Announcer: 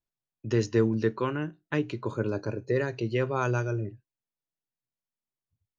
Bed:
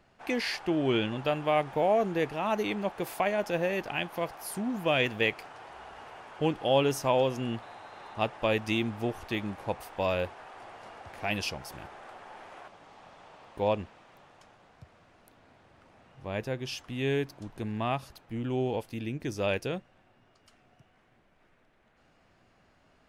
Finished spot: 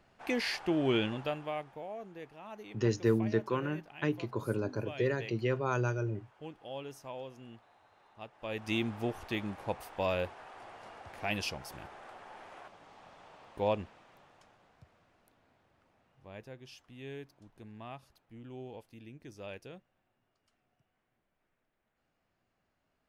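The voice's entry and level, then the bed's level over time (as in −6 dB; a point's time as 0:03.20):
2.30 s, −4.0 dB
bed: 0:01.08 −2 dB
0:01.86 −18 dB
0:08.32 −18 dB
0:08.75 −3 dB
0:13.88 −3 dB
0:16.67 −15.5 dB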